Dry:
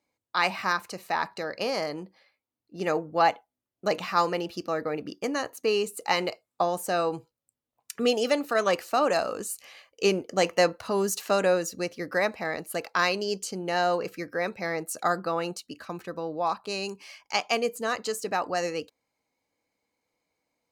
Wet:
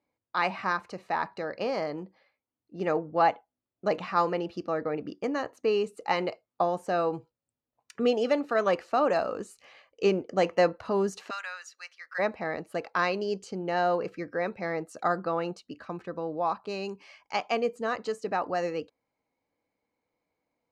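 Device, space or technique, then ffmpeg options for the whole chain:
through cloth: -filter_complex "[0:a]lowpass=7200,highshelf=frequency=3100:gain=-13.5,asplit=3[link_01][link_02][link_03];[link_01]afade=type=out:start_time=11.29:duration=0.02[link_04];[link_02]highpass=frequency=1300:width=0.5412,highpass=frequency=1300:width=1.3066,afade=type=in:start_time=11.29:duration=0.02,afade=type=out:start_time=12.18:duration=0.02[link_05];[link_03]afade=type=in:start_time=12.18:duration=0.02[link_06];[link_04][link_05][link_06]amix=inputs=3:normalize=0"

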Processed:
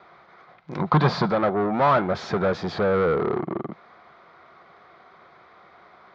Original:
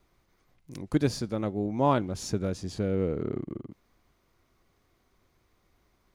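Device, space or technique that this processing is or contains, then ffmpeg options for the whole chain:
overdrive pedal into a guitar cabinet: -filter_complex "[0:a]asplit=2[link_01][link_02];[link_02]highpass=frequency=720:poles=1,volume=31dB,asoftclip=type=tanh:threshold=-11.5dB[link_03];[link_01][link_03]amix=inputs=2:normalize=0,lowpass=frequency=2800:poles=1,volume=-6dB,highpass=86,equalizer=frequency=110:width_type=q:width=4:gain=-5,equalizer=frequency=160:width_type=q:width=4:gain=4,equalizer=frequency=280:width_type=q:width=4:gain=-9,equalizer=frequency=710:width_type=q:width=4:gain=6,equalizer=frequency=1300:width_type=q:width=4:gain=6,equalizer=frequency=2800:width_type=q:width=4:gain=-9,lowpass=frequency=3800:width=0.5412,lowpass=frequency=3800:width=1.3066,asettb=1/sr,asplit=3[link_04][link_05][link_06];[link_04]atrim=end=0.794[link_07];[link_05]atrim=start=0.79:end=1.32,asetpts=PTS-STARTPTS,afade=type=in:duration=0.004:curve=qsin,afade=type=out:start_time=0.526:duration=0.004:curve=qsin,equalizer=frequency=160:width_type=o:width=0.67:gain=11,equalizer=frequency=1000:width_type=o:width=0.67:gain=9,equalizer=frequency=4000:width_type=o:width=0.67:gain=5[link_08];[link_06]atrim=start=1.316[link_09];[link_07][link_08]acrossfade=duration=0.004:curve1=hsin:curve2=qsin[link_10];[link_10][link_09]acrossfade=duration=0.004:curve1=qsin:curve2=hsin,volume=-2dB"

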